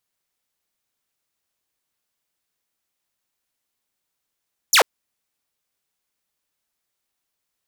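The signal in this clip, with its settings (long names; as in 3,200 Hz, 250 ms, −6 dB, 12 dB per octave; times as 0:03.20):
single falling chirp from 7,600 Hz, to 390 Hz, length 0.09 s saw, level −8 dB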